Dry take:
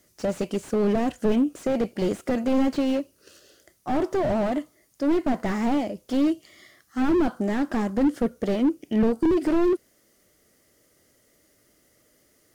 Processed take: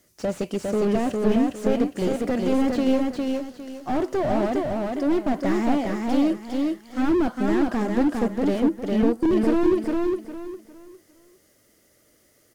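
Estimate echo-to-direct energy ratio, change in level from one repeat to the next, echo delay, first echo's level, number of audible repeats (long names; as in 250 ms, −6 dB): −2.5 dB, −11.0 dB, 406 ms, −3.0 dB, 3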